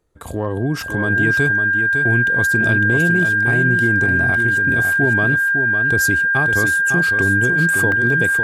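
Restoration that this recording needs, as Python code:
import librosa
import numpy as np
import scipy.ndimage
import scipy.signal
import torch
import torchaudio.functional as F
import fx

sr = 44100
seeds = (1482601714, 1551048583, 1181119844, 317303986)

y = fx.notch(x, sr, hz=1600.0, q=30.0)
y = fx.fix_interpolate(y, sr, at_s=(7.92,), length_ms=1.2)
y = fx.fix_echo_inverse(y, sr, delay_ms=555, level_db=-7.0)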